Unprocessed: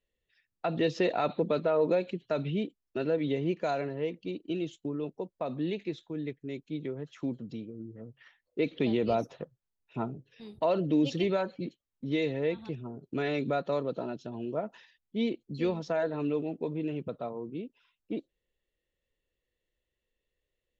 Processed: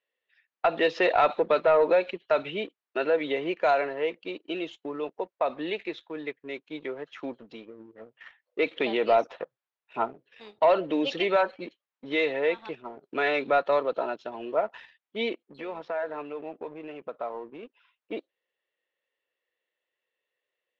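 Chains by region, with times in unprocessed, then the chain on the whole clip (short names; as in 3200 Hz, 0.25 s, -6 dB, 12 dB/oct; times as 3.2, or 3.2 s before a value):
15.34–17.63 LPF 2800 Hz + compressor 4:1, threshold -36 dBFS
whole clip: HPF 690 Hz 12 dB/oct; sample leveller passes 1; LPF 2700 Hz 12 dB/oct; gain +8.5 dB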